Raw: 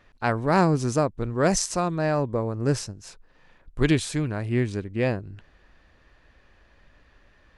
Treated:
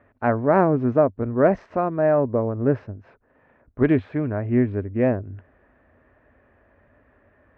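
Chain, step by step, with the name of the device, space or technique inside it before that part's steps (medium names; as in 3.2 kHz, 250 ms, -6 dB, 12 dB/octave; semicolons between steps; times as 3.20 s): bass cabinet (cabinet simulation 68–2000 Hz, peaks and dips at 94 Hz +7 dB, 170 Hz -4 dB, 250 Hz +8 dB, 410 Hz +4 dB, 620 Hz +8 dB)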